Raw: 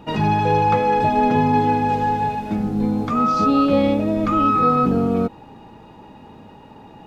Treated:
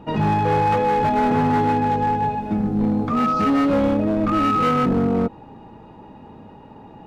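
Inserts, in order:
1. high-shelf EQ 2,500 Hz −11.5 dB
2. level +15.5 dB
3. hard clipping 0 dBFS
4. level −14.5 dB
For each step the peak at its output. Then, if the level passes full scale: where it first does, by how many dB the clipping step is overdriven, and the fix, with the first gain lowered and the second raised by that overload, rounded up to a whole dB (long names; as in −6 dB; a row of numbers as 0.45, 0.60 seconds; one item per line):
−7.0, +8.5, 0.0, −14.5 dBFS
step 2, 8.5 dB
step 2 +6.5 dB, step 4 −5.5 dB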